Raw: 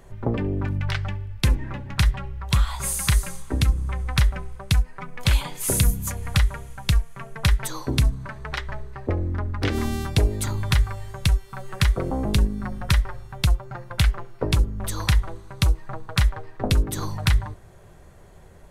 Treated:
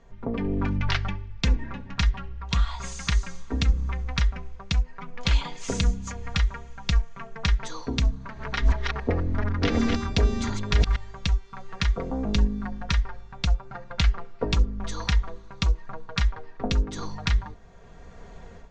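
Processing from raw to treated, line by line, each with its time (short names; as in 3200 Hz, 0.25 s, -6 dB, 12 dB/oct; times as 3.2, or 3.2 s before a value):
8.01–10.96 reverse delay 0.356 s, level -2 dB
whole clip: steep low-pass 6800 Hz 48 dB/oct; comb 4.3 ms, depth 58%; AGC; gain -7.5 dB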